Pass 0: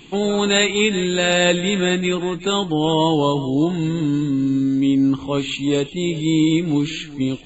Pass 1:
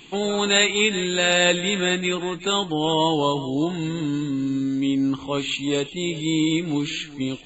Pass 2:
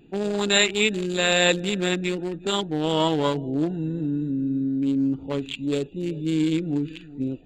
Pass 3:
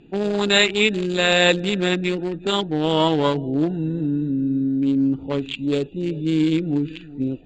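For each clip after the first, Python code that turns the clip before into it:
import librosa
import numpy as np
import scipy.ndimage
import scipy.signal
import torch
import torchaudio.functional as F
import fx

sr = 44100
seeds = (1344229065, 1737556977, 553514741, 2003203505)

y1 = fx.low_shelf(x, sr, hz=490.0, db=-7.0)
y2 = fx.wiener(y1, sr, points=41)
y3 = scipy.signal.sosfilt(scipy.signal.butter(2, 5500.0, 'lowpass', fs=sr, output='sos'), y2)
y3 = y3 * librosa.db_to_amplitude(3.5)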